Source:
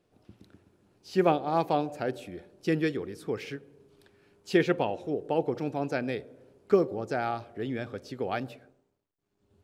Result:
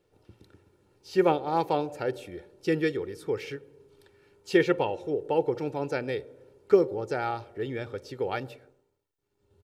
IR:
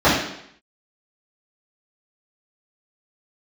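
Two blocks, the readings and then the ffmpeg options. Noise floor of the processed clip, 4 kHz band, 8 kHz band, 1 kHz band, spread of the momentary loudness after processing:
−76 dBFS, +1.0 dB, can't be measured, +0.5 dB, 12 LU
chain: -af "aecho=1:1:2.2:0.52"

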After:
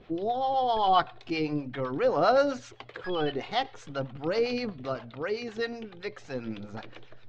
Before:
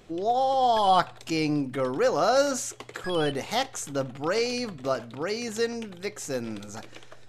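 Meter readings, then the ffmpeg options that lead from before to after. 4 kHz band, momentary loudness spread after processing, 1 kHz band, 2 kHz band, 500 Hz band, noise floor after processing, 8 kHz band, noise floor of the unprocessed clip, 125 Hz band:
−4.0 dB, 16 LU, −2.5 dB, −2.5 dB, −2.0 dB, −51 dBFS, below −15 dB, −47 dBFS, −2.5 dB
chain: -filter_complex "[0:a]aphaser=in_gain=1:out_gain=1:delay=2.8:decay=0.34:speed=0.44:type=sinusoidal,acrossover=split=600[link_01][link_02];[link_01]aeval=exprs='val(0)*(1-0.7/2+0.7/2*cos(2*PI*7.7*n/s))':channel_layout=same[link_03];[link_02]aeval=exprs='val(0)*(1-0.7/2-0.7/2*cos(2*PI*7.7*n/s))':channel_layout=same[link_04];[link_03][link_04]amix=inputs=2:normalize=0,lowpass=frequency=4200:width=0.5412,lowpass=frequency=4200:width=1.3066"

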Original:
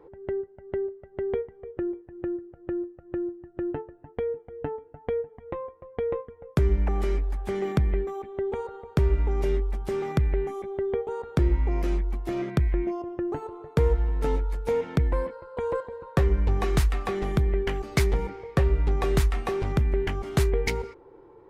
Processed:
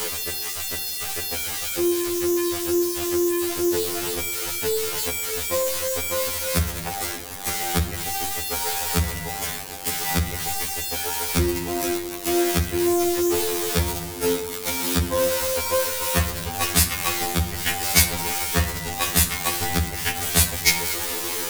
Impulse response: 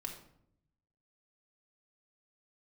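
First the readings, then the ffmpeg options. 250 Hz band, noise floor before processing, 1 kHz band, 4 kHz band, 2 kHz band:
+5.5 dB, −53 dBFS, +7.0 dB, +18.0 dB, +11.0 dB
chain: -filter_complex "[0:a]aeval=exprs='val(0)+0.5*0.0355*sgn(val(0))':channel_layout=same,asplit=2[link_01][link_02];[1:a]atrim=start_sample=2205,asetrate=34398,aresample=44100[link_03];[link_02][link_03]afir=irnorm=-1:irlink=0,volume=-1.5dB[link_04];[link_01][link_04]amix=inputs=2:normalize=0,crystalizer=i=8:c=0,afftfilt=real='re*2*eq(mod(b,4),0)':imag='im*2*eq(mod(b,4),0)':win_size=2048:overlap=0.75,volume=-2.5dB"

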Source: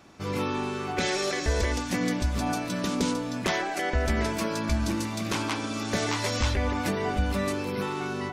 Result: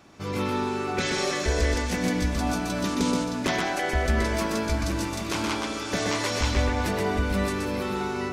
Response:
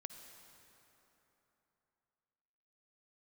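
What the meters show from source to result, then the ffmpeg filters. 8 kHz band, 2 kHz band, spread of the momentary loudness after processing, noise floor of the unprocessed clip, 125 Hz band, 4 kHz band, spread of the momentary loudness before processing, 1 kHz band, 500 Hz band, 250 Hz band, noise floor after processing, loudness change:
+2.0 dB, +2.0 dB, 4 LU, −33 dBFS, +1.5 dB, +1.5 dB, 4 LU, +1.5 dB, +2.0 dB, +1.5 dB, −32 dBFS, +2.0 dB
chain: -filter_complex "[0:a]asplit=2[link_01][link_02];[1:a]atrim=start_sample=2205,adelay=125[link_03];[link_02][link_03]afir=irnorm=-1:irlink=0,volume=1.5dB[link_04];[link_01][link_04]amix=inputs=2:normalize=0"

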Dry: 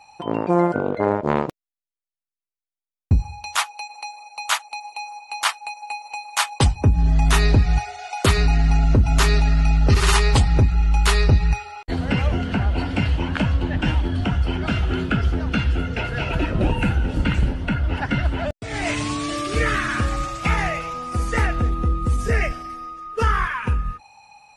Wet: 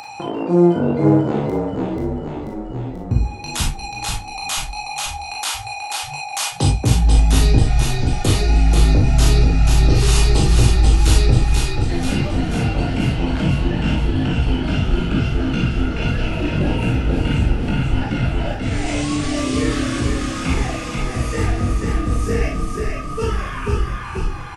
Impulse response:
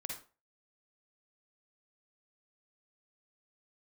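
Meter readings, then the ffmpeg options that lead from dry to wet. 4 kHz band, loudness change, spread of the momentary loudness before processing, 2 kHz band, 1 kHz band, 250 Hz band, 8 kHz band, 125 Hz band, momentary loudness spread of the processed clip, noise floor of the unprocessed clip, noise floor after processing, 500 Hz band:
+2.5 dB, +2.0 dB, 12 LU, −2.0 dB, −1.5 dB, +5.0 dB, +4.5 dB, +3.0 dB, 10 LU, below −85 dBFS, −30 dBFS, +3.0 dB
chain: -filter_complex "[0:a]highpass=65,acrossover=split=640|3200[link_01][link_02][link_03];[link_02]acompressor=threshold=-37dB:ratio=6[link_04];[link_01][link_04][link_03]amix=inputs=3:normalize=0,flanger=delay=17:depth=4.2:speed=1.6,asplit=9[link_05][link_06][link_07][link_08][link_09][link_10][link_11][link_12][link_13];[link_06]adelay=486,afreqshift=-33,volume=-3.5dB[link_14];[link_07]adelay=972,afreqshift=-66,volume=-8.4dB[link_15];[link_08]adelay=1458,afreqshift=-99,volume=-13.3dB[link_16];[link_09]adelay=1944,afreqshift=-132,volume=-18.1dB[link_17];[link_10]adelay=2430,afreqshift=-165,volume=-23dB[link_18];[link_11]adelay=2916,afreqshift=-198,volume=-27.9dB[link_19];[link_12]adelay=3402,afreqshift=-231,volume=-32.8dB[link_20];[link_13]adelay=3888,afreqshift=-264,volume=-37.7dB[link_21];[link_05][link_14][link_15][link_16][link_17][link_18][link_19][link_20][link_21]amix=inputs=9:normalize=0,asplit=2[link_22][link_23];[link_23]acompressor=mode=upward:threshold=-22dB:ratio=2.5,volume=2dB[link_24];[link_22][link_24]amix=inputs=2:normalize=0[link_25];[1:a]atrim=start_sample=2205,asetrate=61740,aresample=44100[link_26];[link_25][link_26]afir=irnorm=-1:irlink=0,volume=3dB"

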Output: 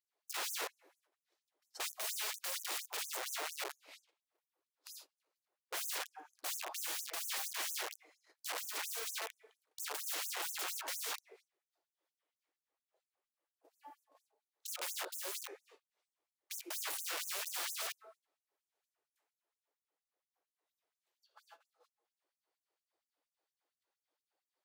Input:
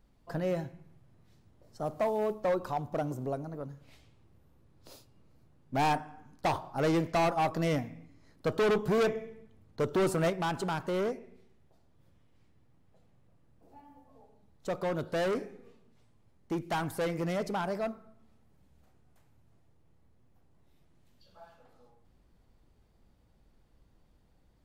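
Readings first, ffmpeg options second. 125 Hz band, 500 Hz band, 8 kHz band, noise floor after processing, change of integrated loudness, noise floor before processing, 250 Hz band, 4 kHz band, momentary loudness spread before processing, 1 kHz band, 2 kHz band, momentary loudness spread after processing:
below −40 dB, −21.5 dB, +10.0 dB, below −85 dBFS, −7.5 dB, −65 dBFS, −29.0 dB, +3.0 dB, 13 LU, −13.5 dB, −4.5 dB, 12 LU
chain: -af "agate=range=-17dB:threshold=-57dB:ratio=16:detection=peak,aeval=exprs='(mod(89.1*val(0)+1,2)-1)/89.1':channel_layout=same,asubboost=boost=8:cutoff=88,afftfilt=real='re*gte(b*sr/1024,280*pow(6100/280,0.5+0.5*sin(2*PI*4.3*pts/sr)))':imag='im*gte(b*sr/1024,280*pow(6100/280,0.5+0.5*sin(2*PI*4.3*pts/sr)))':win_size=1024:overlap=0.75,volume=5.5dB"

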